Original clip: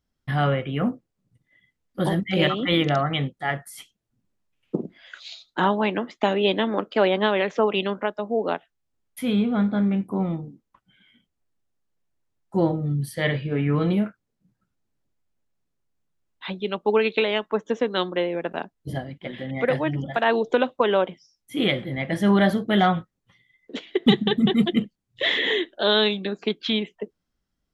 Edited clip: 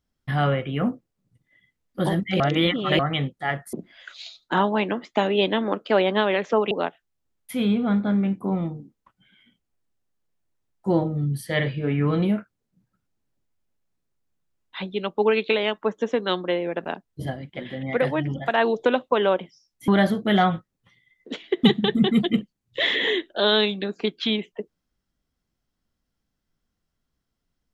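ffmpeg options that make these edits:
-filter_complex "[0:a]asplit=6[s0][s1][s2][s3][s4][s5];[s0]atrim=end=2.402[s6];[s1]atrim=start=2.398:end=2.992,asetpts=PTS-STARTPTS,areverse[s7];[s2]atrim=start=2.988:end=3.732[s8];[s3]atrim=start=4.788:end=7.772[s9];[s4]atrim=start=8.388:end=21.562[s10];[s5]atrim=start=22.308[s11];[s6][s7]acrossfade=d=0.004:c1=hsin:c2=hsin[s12];[s12][s8]acrossfade=d=0.004:c1=hsin:c2=hsin[s13];[s13][s9]acrossfade=d=0.004:c1=hsin:c2=hsin[s14];[s14][s10]acrossfade=d=0.004:c1=hsin:c2=hsin[s15];[s15][s11]acrossfade=d=0.004:c1=hsin:c2=hsin"

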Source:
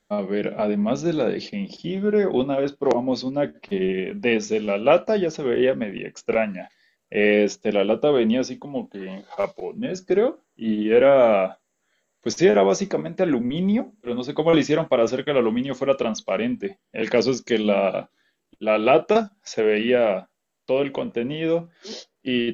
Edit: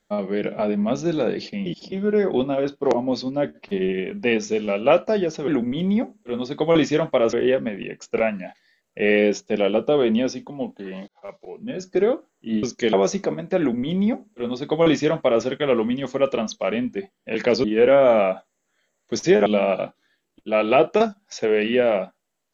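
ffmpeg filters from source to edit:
-filter_complex "[0:a]asplit=10[s0][s1][s2][s3][s4][s5][s6][s7][s8][s9];[s0]atrim=end=1.662[s10];[s1]atrim=start=1.658:end=1.922,asetpts=PTS-STARTPTS,areverse[s11];[s2]atrim=start=1.918:end=5.482[s12];[s3]atrim=start=13.258:end=15.112[s13];[s4]atrim=start=5.478:end=9.23,asetpts=PTS-STARTPTS,afade=t=out:st=3.748:d=0.004:c=hsin[s14];[s5]atrim=start=9.23:end=10.782,asetpts=PTS-STARTPTS,afade=t=in:d=0.87[s15];[s6]atrim=start=17.308:end=17.612[s16];[s7]atrim=start=12.598:end=17.312[s17];[s8]atrim=start=10.778:end=12.602[s18];[s9]atrim=start=17.608[s19];[s10][s11]acrossfade=d=0.004:c1=hsin:c2=hsin[s20];[s20][s12]acrossfade=d=0.004:c1=hsin:c2=hsin[s21];[s21][s13]acrossfade=d=0.004:c1=hsin:c2=hsin[s22];[s14][s15]concat=n=2:v=0:a=1[s23];[s22][s23]acrossfade=d=0.004:c1=hsin:c2=hsin[s24];[s24][s16]acrossfade=d=0.004:c1=hsin:c2=hsin[s25];[s25][s17]acrossfade=d=0.004:c1=hsin:c2=hsin[s26];[s26][s18]acrossfade=d=0.004:c1=hsin:c2=hsin[s27];[s27][s19]acrossfade=d=0.004:c1=hsin:c2=hsin"

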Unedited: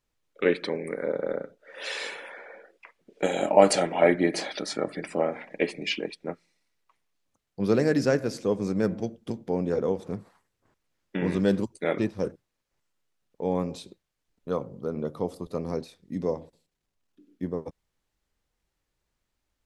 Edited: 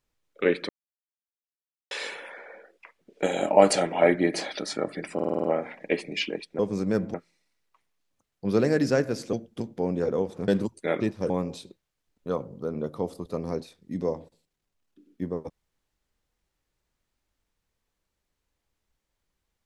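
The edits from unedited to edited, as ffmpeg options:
-filter_complex "[0:a]asplit=14[s0][s1][s2][s3][s4][s5][s6][s7][s8][s9][s10][s11][s12][s13];[s0]atrim=end=0.69,asetpts=PTS-STARTPTS,afade=t=out:st=0.686:d=0.004:c=hsin[s14];[s1]atrim=start=0.69:end=1.91,asetpts=PTS-STARTPTS,volume=0[s15];[s2]atrim=start=1.91:end=5.192,asetpts=PTS-STARTPTS,afade=t=in:d=0.004:c=hsin[s16];[s3]atrim=start=5.138:end=5.192[s17];[s4]atrim=start=5.138:end=5.192[s18];[s5]atrim=start=5.138:end=5.192[s19];[s6]atrim=start=5.138:end=5.192[s20];[s7]atrim=start=5.138:end=5.192[s21];[s8]atrim=start=5.138:end=6.292[s22];[s9]atrim=start=8.478:end=9.032[s23];[s10]atrim=start=6.288:end=8.482[s24];[s11]atrim=start=9.028:end=10.182[s25];[s12]atrim=start=11.458:end=12.282[s26];[s13]atrim=start=13.508[s27];[s14][s15][s16]concat=n=3:v=0:a=1[s28];[s28][s17]acrossfade=d=0.004:c1=hsin:c2=hsin[s29];[s29][s18]acrossfade=d=0.004:c1=hsin:c2=hsin[s30];[s30][s19]acrossfade=d=0.004:c1=hsin:c2=hsin[s31];[s31][s20]acrossfade=d=0.004:c1=hsin:c2=hsin[s32];[s32][s21]acrossfade=d=0.004:c1=hsin:c2=hsin[s33];[s33][s22]acrossfade=d=0.004:c1=hsin:c2=hsin[s34];[s34][s23]acrossfade=d=0.004:c1=hsin:c2=hsin[s35];[s35][s24]acrossfade=d=0.004:c1=hsin:c2=hsin[s36];[s36][s25]acrossfade=d=0.004:c1=hsin:c2=hsin[s37];[s37][s26]acrossfade=d=0.004:c1=hsin:c2=hsin[s38];[s38][s27]acrossfade=d=0.004:c1=hsin:c2=hsin"

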